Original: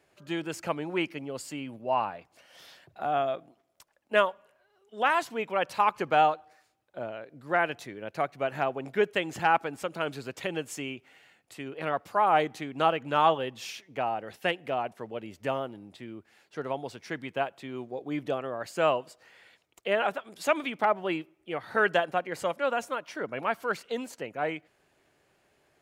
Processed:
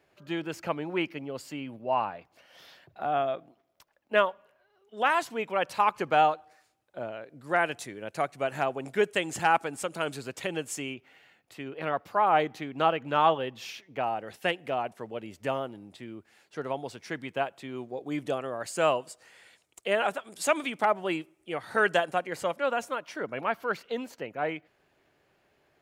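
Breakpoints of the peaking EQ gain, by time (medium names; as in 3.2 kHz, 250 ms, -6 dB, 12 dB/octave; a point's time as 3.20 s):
peaking EQ 8.6 kHz 1 oct
-7.5 dB
from 4.97 s +2 dB
from 7.44 s +11.5 dB
from 10.17 s +5.5 dB
from 10.94 s -6.5 dB
from 14.04 s +3 dB
from 18.06 s +10.5 dB
from 22.35 s +0.5 dB
from 23.41 s -8.5 dB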